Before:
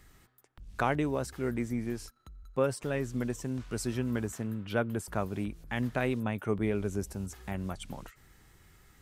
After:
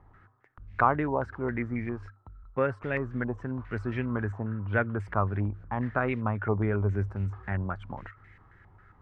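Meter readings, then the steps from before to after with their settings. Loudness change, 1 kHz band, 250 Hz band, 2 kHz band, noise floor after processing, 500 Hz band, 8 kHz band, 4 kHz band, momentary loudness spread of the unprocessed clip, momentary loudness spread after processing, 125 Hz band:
+3.0 dB, +7.0 dB, +0.5 dB, +5.5 dB, -59 dBFS, +1.5 dB, under -25 dB, under -10 dB, 9 LU, 10 LU, +5.5 dB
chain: peaking EQ 100 Hz +13.5 dB 0.2 oct; step-sequenced low-pass 7.4 Hz 910–2100 Hz

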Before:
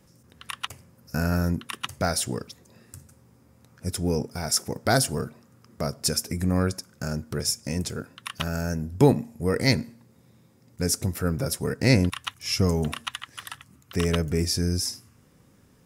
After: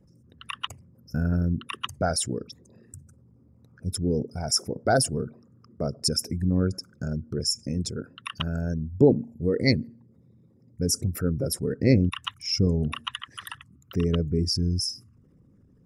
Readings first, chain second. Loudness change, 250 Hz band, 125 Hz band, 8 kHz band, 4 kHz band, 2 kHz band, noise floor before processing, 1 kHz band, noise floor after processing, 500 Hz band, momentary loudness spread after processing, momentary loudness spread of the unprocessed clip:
-0.5 dB, +0.5 dB, 0.0 dB, -2.0 dB, +0.5 dB, -4.0 dB, -59 dBFS, -2.0 dB, -59 dBFS, +0.5 dB, 14 LU, 14 LU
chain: resonances exaggerated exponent 2

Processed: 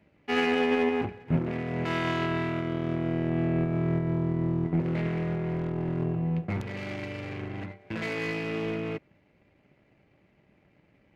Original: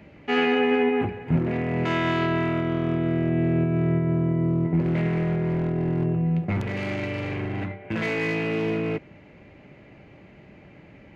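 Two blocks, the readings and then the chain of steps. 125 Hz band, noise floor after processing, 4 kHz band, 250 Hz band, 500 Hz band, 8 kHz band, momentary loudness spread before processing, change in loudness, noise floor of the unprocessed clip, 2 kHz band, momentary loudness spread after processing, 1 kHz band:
-5.0 dB, -65 dBFS, -3.5 dB, -5.0 dB, -4.5 dB, no reading, 7 LU, -5.0 dB, -50 dBFS, -4.5 dB, 10 LU, -4.0 dB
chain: power-law waveshaper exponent 1.4; trim -1.5 dB

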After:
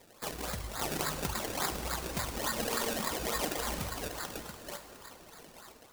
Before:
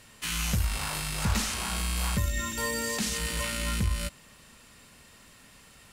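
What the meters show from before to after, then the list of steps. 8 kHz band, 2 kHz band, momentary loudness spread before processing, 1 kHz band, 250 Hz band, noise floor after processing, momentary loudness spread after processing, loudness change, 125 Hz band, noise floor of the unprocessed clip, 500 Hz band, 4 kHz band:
-5.5 dB, -5.5 dB, 3 LU, +0.5 dB, -4.5 dB, -57 dBFS, 18 LU, -5.0 dB, -11.0 dB, -55 dBFS, +2.0 dB, -5.0 dB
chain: low-pass 8.1 kHz 12 dB/octave; compression 3:1, threshold -34 dBFS, peak gain reduction 9.5 dB; thinning echo 687 ms, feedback 18%, high-pass 300 Hz, level -3.5 dB; decimation with a swept rate 29×, swing 100% 3.5 Hz; level rider gain up to 6.5 dB; tone controls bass -9 dB, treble +3 dB; reverb removal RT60 1.6 s; treble shelf 4.2 kHz +7 dB; plate-style reverb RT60 3.1 s, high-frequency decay 0.8×, DRR 7 dB; trim -2 dB

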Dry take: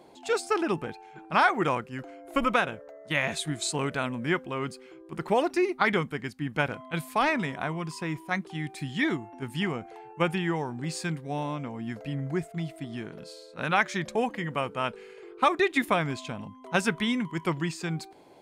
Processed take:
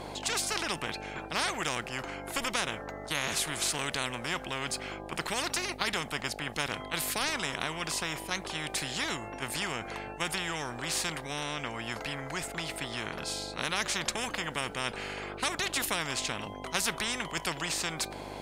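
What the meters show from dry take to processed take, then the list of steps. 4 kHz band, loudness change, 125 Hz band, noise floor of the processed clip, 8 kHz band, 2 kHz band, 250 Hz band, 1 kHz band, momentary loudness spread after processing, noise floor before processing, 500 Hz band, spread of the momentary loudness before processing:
+5.0 dB, -3.5 dB, -8.5 dB, -42 dBFS, +8.0 dB, -3.0 dB, -9.5 dB, -6.0 dB, 6 LU, -50 dBFS, -8.0 dB, 13 LU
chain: treble shelf 10 kHz -5 dB; mains buzz 50 Hz, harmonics 17, -55 dBFS -1 dB/octave; spectrum-flattening compressor 4:1; trim -3 dB

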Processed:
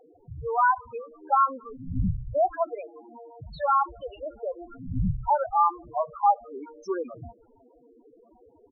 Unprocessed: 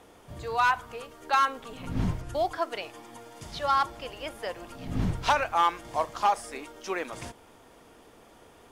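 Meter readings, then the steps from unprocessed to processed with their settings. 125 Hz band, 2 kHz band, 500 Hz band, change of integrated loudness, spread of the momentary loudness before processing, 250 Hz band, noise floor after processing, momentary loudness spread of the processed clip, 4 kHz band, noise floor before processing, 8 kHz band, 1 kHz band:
+2.0 dB, -4.5 dB, +3.5 dB, +2.0 dB, 17 LU, +0.5 dB, -59 dBFS, 17 LU, under -15 dB, -55 dBFS, under -20 dB, +2.5 dB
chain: speakerphone echo 250 ms, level -28 dB; low-pass that closes with the level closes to 1.5 kHz, closed at -22.5 dBFS; loudest bins only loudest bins 4; trim +5 dB

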